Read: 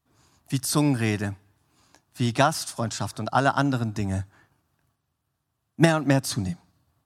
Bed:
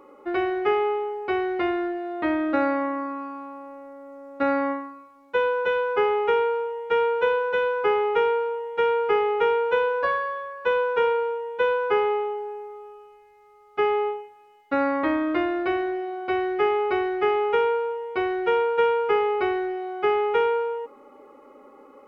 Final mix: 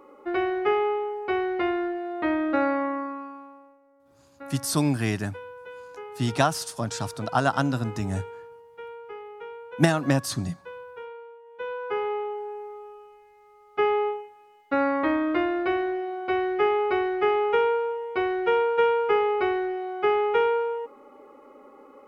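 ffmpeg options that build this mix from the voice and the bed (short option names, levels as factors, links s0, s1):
-filter_complex "[0:a]adelay=4000,volume=0.841[s0];[1:a]volume=7.08,afade=t=out:st=2.95:d=0.84:silence=0.133352,afade=t=in:st=11.43:d=1.25:silence=0.125893[s1];[s0][s1]amix=inputs=2:normalize=0"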